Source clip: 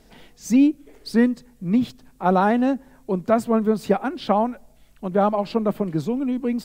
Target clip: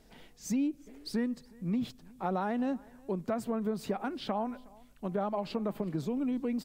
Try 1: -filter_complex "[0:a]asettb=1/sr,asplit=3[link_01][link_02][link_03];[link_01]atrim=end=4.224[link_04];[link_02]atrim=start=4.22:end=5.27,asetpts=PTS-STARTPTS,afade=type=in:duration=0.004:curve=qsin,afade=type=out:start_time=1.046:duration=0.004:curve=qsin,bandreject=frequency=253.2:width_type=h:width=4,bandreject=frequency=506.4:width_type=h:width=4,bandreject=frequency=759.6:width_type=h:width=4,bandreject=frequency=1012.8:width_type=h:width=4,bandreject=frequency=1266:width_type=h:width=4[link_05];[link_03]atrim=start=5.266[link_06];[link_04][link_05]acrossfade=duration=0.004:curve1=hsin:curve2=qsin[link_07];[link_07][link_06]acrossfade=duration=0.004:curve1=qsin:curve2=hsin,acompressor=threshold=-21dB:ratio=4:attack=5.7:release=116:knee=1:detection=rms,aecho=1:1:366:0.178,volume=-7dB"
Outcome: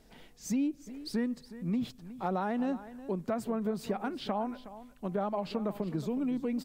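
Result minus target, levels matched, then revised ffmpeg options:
echo-to-direct +9.5 dB
-filter_complex "[0:a]asettb=1/sr,asplit=3[link_01][link_02][link_03];[link_01]atrim=end=4.224[link_04];[link_02]atrim=start=4.22:end=5.27,asetpts=PTS-STARTPTS,afade=type=in:duration=0.004:curve=qsin,afade=type=out:start_time=1.046:duration=0.004:curve=qsin,bandreject=frequency=253.2:width_type=h:width=4,bandreject=frequency=506.4:width_type=h:width=4,bandreject=frequency=759.6:width_type=h:width=4,bandreject=frequency=1012.8:width_type=h:width=4,bandreject=frequency=1266:width_type=h:width=4[link_05];[link_03]atrim=start=5.266[link_06];[link_04][link_05]acrossfade=duration=0.004:curve1=hsin:curve2=qsin[link_07];[link_07][link_06]acrossfade=duration=0.004:curve1=qsin:curve2=hsin,acompressor=threshold=-21dB:ratio=4:attack=5.7:release=116:knee=1:detection=rms,aecho=1:1:366:0.0596,volume=-7dB"

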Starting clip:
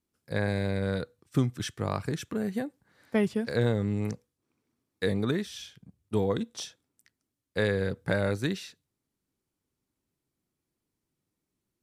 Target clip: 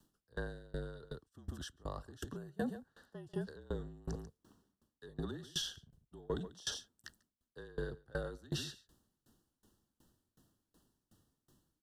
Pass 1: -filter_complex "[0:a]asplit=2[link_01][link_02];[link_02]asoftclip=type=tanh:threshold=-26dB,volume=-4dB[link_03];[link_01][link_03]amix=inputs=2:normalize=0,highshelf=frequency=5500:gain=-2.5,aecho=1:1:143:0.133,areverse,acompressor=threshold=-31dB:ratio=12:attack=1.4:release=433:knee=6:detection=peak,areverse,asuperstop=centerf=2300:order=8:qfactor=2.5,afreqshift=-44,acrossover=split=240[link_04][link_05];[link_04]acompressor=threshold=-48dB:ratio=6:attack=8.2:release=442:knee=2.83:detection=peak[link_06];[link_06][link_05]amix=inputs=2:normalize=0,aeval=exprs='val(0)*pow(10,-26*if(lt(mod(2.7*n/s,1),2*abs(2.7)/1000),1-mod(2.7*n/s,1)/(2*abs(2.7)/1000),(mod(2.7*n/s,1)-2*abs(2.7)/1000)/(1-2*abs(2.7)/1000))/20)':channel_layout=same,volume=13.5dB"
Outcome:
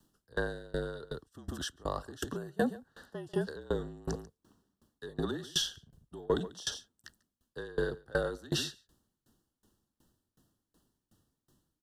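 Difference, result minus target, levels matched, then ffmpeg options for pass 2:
downward compressor: peak gain reduction −9.5 dB
-filter_complex "[0:a]asplit=2[link_01][link_02];[link_02]asoftclip=type=tanh:threshold=-26dB,volume=-4dB[link_03];[link_01][link_03]amix=inputs=2:normalize=0,highshelf=frequency=5500:gain=-2.5,aecho=1:1:143:0.133,areverse,acompressor=threshold=-41.5dB:ratio=12:attack=1.4:release=433:knee=6:detection=peak,areverse,asuperstop=centerf=2300:order=8:qfactor=2.5,afreqshift=-44,acrossover=split=240[link_04][link_05];[link_04]acompressor=threshold=-48dB:ratio=6:attack=8.2:release=442:knee=2.83:detection=peak[link_06];[link_06][link_05]amix=inputs=2:normalize=0,aeval=exprs='val(0)*pow(10,-26*if(lt(mod(2.7*n/s,1),2*abs(2.7)/1000),1-mod(2.7*n/s,1)/(2*abs(2.7)/1000),(mod(2.7*n/s,1)-2*abs(2.7)/1000)/(1-2*abs(2.7)/1000))/20)':channel_layout=same,volume=13.5dB"

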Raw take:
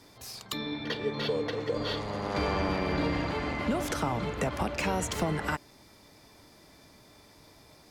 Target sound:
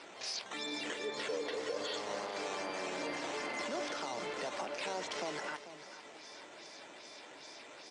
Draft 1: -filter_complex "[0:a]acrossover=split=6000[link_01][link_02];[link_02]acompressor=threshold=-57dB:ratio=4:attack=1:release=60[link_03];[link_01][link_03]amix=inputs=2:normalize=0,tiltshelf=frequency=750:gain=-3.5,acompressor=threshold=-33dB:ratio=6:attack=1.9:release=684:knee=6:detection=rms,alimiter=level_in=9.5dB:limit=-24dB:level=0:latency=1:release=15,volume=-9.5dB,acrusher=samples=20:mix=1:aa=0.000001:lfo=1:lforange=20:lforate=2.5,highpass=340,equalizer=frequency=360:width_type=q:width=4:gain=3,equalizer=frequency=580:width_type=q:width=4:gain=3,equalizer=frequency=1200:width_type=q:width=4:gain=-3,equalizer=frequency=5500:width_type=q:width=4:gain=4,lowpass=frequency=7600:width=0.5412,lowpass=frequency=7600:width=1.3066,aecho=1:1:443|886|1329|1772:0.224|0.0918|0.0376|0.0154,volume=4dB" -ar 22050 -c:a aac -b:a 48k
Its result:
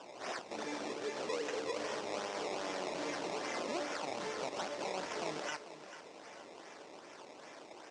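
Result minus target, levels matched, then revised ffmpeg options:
sample-and-hold swept by an LFO: distortion +9 dB
-filter_complex "[0:a]acrossover=split=6000[link_01][link_02];[link_02]acompressor=threshold=-57dB:ratio=4:attack=1:release=60[link_03];[link_01][link_03]amix=inputs=2:normalize=0,tiltshelf=frequency=750:gain=-3.5,acompressor=threshold=-33dB:ratio=6:attack=1.9:release=684:knee=6:detection=rms,alimiter=level_in=9.5dB:limit=-24dB:level=0:latency=1:release=15,volume=-9.5dB,acrusher=samples=6:mix=1:aa=0.000001:lfo=1:lforange=6:lforate=2.5,highpass=340,equalizer=frequency=360:width_type=q:width=4:gain=3,equalizer=frequency=580:width_type=q:width=4:gain=3,equalizer=frequency=1200:width_type=q:width=4:gain=-3,equalizer=frequency=5500:width_type=q:width=4:gain=4,lowpass=frequency=7600:width=0.5412,lowpass=frequency=7600:width=1.3066,aecho=1:1:443|886|1329|1772:0.224|0.0918|0.0376|0.0154,volume=4dB" -ar 22050 -c:a aac -b:a 48k

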